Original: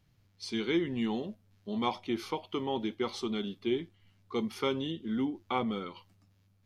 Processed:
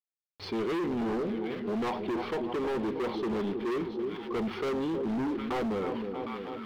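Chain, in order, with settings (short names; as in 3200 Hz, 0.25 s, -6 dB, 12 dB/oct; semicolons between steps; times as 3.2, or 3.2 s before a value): bell 460 Hz +10 dB 1.5 oct; notch 570 Hz, Q 12; companded quantiser 4-bit; air absorption 400 m; split-band echo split 1100 Hz, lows 0.315 s, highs 0.759 s, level -13.5 dB; hard clip -30.5 dBFS, distortion -5 dB; fast leveller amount 50%; gain +1.5 dB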